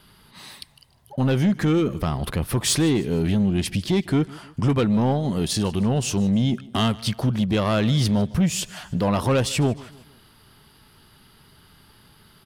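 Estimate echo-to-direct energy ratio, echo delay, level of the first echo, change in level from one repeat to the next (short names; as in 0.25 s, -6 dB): -20.5 dB, 0.153 s, -21.5 dB, -6.5 dB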